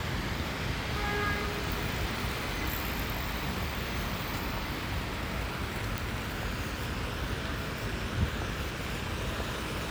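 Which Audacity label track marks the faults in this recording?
5.980000	5.980000	click

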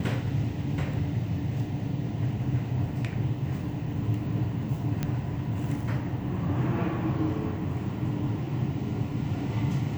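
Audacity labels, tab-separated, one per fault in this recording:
5.030000	5.030000	click −15 dBFS

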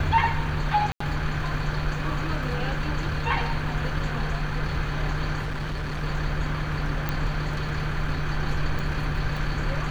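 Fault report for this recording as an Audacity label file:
0.920000	1.000000	drop-out 84 ms
5.420000	6.040000	clipping −26 dBFS
7.090000	7.090000	click −13 dBFS
8.790000	8.790000	click

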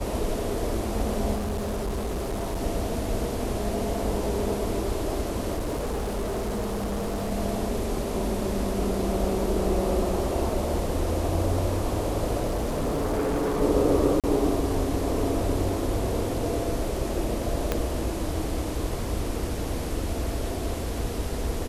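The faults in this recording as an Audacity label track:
1.350000	2.610000	clipping −25.5 dBFS
5.540000	7.320000	clipping −25 dBFS
12.450000	13.620000	clipping −22.5 dBFS
14.200000	14.240000	drop-out 37 ms
17.720000	17.720000	click −10 dBFS

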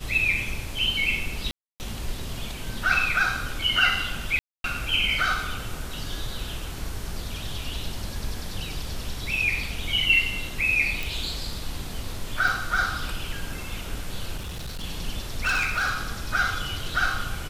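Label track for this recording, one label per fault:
1.510000	1.800000	drop-out 289 ms
4.390000	4.640000	drop-out 252 ms
11.030000	11.030000	click
12.480000	12.480000	drop-out 2 ms
14.380000	14.840000	clipping −30 dBFS
15.410000	16.030000	clipping −20.5 dBFS

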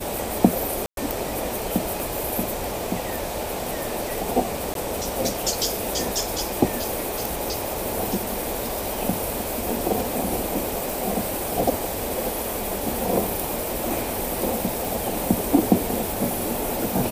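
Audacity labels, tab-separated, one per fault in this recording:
0.860000	0.970000	drop-out 112 ms
2.000000	2.000000	click
4.740000	4.750000	drop-out 12 ms
10.900000	10.900000	click
14.850000	14.850000	click

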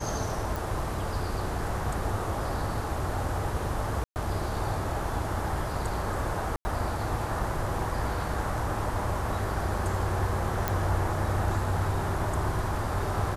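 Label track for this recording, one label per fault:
0.560000	0.560000	click
4.040000	4.160000	drop-out 119 ms
6.560000	6.650000	drop-out 90 ms
10.680000	10.680000	click

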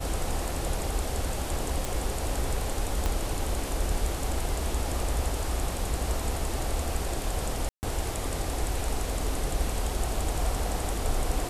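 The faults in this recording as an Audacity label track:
1.850000	1.850000	click
3.060000	3.060000	click −14 dBFS
7.690000	7.830000	drop-out 139 ms

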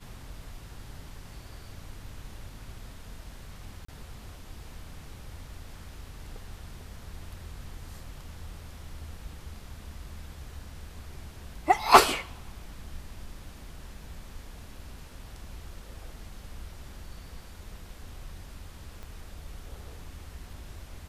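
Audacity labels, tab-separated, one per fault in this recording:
3.850000	3.880000	drop-out 34 ms
19.030000	19.030000	click −29 dBFS

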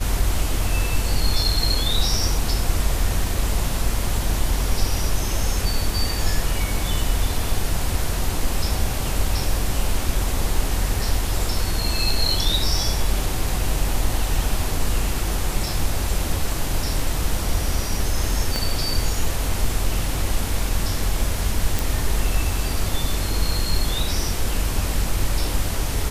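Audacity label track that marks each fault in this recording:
18.560000	18.560000	click
21.790000	21.790000	click

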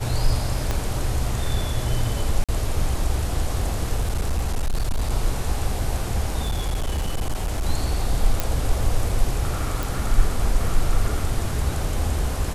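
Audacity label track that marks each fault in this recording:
0.710000	0.710000	click −10 dBFS
2.440000	2.490000	drop-out 46 ms
4.000000	5.120000	clipping −18 dBFS
6.440000	7.660000	clipping −19.5 dBFS
8.400000	8.400000	click
9.830000	9.830000	click

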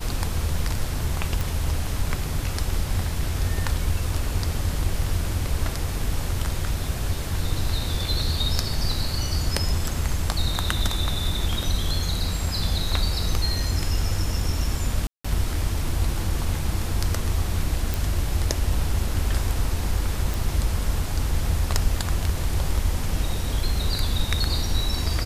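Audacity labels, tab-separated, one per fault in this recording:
1.410000	1.410000	click
15.070000	15.240000	drop-out 175 ms
17.940000	17.940000	click
20.340000	20.340000	click

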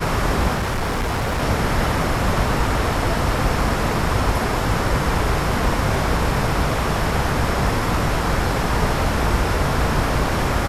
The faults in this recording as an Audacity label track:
0.540000	1.420000	clipping −18.5 dBFS

